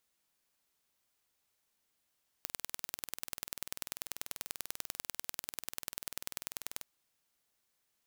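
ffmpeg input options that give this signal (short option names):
-f lavfi -i "aevalsrc='0.355*eq(mod(n,2162),0)*(0.5+0.5*eq(mod(n,4324),0))':d=4.37:s=44100"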